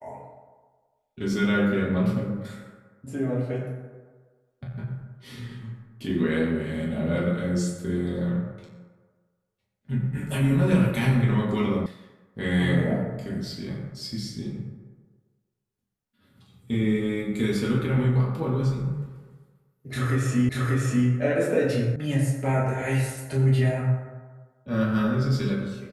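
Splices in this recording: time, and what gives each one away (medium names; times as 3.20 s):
11.86 s: sound stops dead
20.49 s: repeat of the last 0.59 s
21.96 s: sound stops dead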